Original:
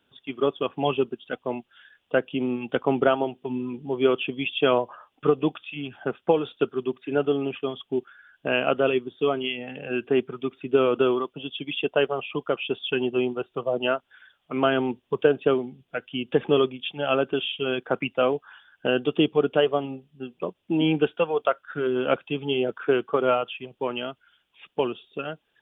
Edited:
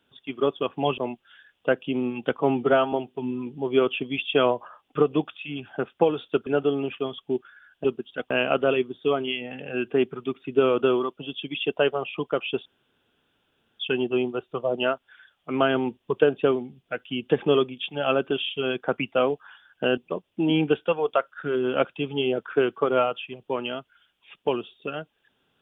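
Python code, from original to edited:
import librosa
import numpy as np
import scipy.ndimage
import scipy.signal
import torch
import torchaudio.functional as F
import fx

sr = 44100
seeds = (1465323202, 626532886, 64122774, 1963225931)

y = fx.edit(x, sr, fx.move(start_s=0.98, length_s=0.46, to_s=8.47),
    fx.stretch_span(start_s=2.83, length_s=0.37, factor=1.5),
    fx.cut(start_s=6.74, length_s=0.35),
    fx.insert_room_tone(at_s=12.82, length_s=1.14),
    fx.cut(start_s=19.0, length_s=1.29), tone=tone)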